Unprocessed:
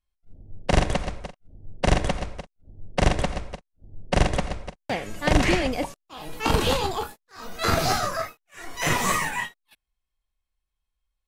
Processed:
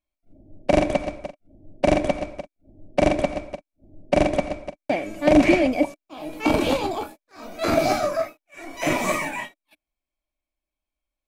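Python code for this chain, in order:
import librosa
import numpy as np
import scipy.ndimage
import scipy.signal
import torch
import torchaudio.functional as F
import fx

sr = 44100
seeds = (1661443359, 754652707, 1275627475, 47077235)

y = fx.low_shelf(x, sr, hz=230.0, db=-3.5)
y = fx.small_body(y, sr, hz=(300.0, 600.0, 2300.0), ring_ms=35, db=17)
y = F.gain(torch.from_numpy(y), -5.0).numpy()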